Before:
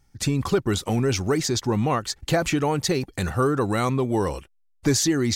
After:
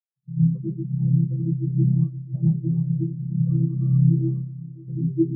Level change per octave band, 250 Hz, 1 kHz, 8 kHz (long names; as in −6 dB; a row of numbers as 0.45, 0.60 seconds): +0.5 dB, below −40 dB, below −40 dB